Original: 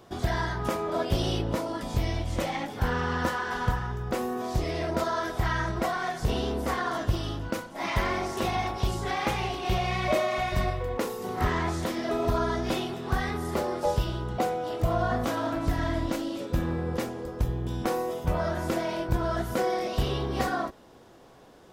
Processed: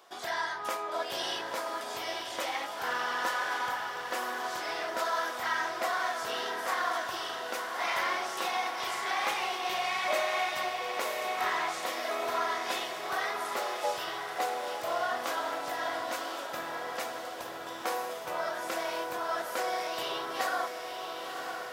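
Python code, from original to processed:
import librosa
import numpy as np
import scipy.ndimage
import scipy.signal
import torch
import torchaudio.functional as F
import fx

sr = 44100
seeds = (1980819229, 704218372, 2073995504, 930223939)

p1 = scipy.signal.sosfilt(scipy.signal.butter(2, 770.0, 'highpass', fs=sr, output='sos'), x)
y = p1 + fx.echo_diffused(p1, sr, ms=1027, feedback_pct=57, wet_db=-5.5, dry=0)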